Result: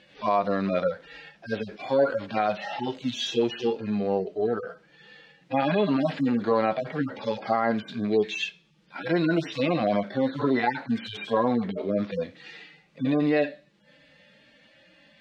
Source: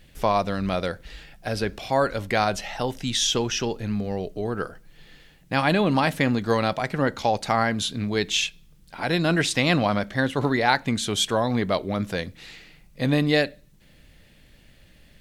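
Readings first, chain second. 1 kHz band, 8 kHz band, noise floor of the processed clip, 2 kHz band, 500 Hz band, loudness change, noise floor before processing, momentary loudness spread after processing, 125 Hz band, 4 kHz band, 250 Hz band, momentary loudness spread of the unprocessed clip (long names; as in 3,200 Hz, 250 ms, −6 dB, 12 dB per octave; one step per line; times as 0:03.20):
−3.0 dB, below −15 dB, −60 dBFS, −7.0 dB, 0.0 dB, −2.5 dB, −54 dBFS, 9 LU, −7.0 dB, −9.5 dB, −1.0 dB, 9 LU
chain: harmonic-percussive split with one part muted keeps harmonic
bad sample-rate conversion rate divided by 2×, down filtered, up hold
brickwall limiter −18 dBFS, peak gain reduction 8.5 dB
de-essing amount 85%
band-pass filter 280–4,000 Hz
level +6.5 dB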